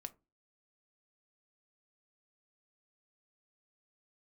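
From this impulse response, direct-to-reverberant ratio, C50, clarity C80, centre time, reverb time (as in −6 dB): 8.5 dB, 21.5 dB, 28.5 dB, 3 ms, 0.25 s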